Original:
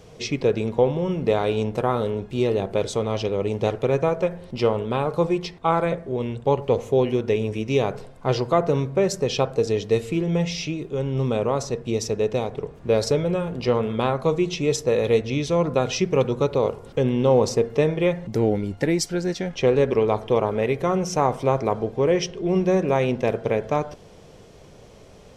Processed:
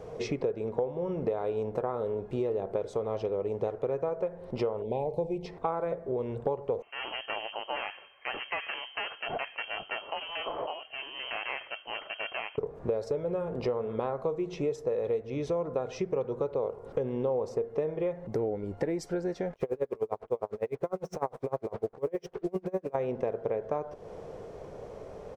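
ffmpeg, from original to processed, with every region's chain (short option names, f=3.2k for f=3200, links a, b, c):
-filter_complex "[0:a]asettb=1/sr,asplit=3[a][b][c];[a]atrim=end=4.824[d];[b]atrim=start=4.82:end=5.46,asetpts=PTS-STARTPTS,afade=t=in:d=0.004:c=qsin,afade=t=out:st=0.636:d=0.004:c=qsin,asubboost=boost=9:cutoff=190,asuperstop=centerf=1400:order=8:qfactor=1.1[e];[c]atrim=start=5.456[f];[d][e]acrossfade=d=0.004:c1=hsin:c2=qsin[g];[g][f]acrossfade=d=0.004:c1=qsin:c2=hsin,asettb=1/sr,asplit=3[h][i][j];[h]atrim=end=6.824[k];[i]atrim=start=6.82:end=12.58,asetpts=PTS-STARTPTS,afade=t=in:d=0.004:c=qsin,afade=t=out:st=5.756:d=0.004:c=qsin,aeval=exprs='(tanh(11.2*val(0)+0.75)-tanh(0.75))/11.2':c=same,tiltshelf=f=940:g=-6,lowpass=f=2.7k:t=q:w=0.5098,lowpass=f=2.7k:t=q:w=0.6013,lowpass=f=2.7k:t=q:w=0.9,lowpass=f=2.7k:t=q:w=2.563,afreqshift=-3200[l];[j]atrim=start=12.576[m];[k][l]acrossfade=d=0.004:c1=hsin:c2=qsin[n];[n][m]acrossfade=d=0.004:c1=qsin:c2=hsin,asettb=1/sr,asplit=3[o][p][q];[o]atrim=end=19.534[r];[p]atrim=start=19.53:end=22.95,asetpts=PTS-STARTPTS,afade=t=in:d=0.004:c=qsin,afade=t=out:st=3.416:d=0.004:c=qsin,acrusher=bits=5:mix=0:aa=0.5,aeval=exprs='val(0)*pow(10,-35*(0.5-0.5*cos(2*PI*9.9*n/s))/20)':c=same[s];[q]atrim=start=22.946[t];[r][s]acrossfade=d=0.004:c1=hsin:c2=qsin[u];[u][t]acrossfade=d=0.004:c1=qsin:c2=hsin,firequalizer=gain_entry='entry(240,0);entry(450,9);entry(3000,-8)':delay=0.05:min_phase=1,acompressor=threshold=-28dB:ratio=5,volume=-1.5dB"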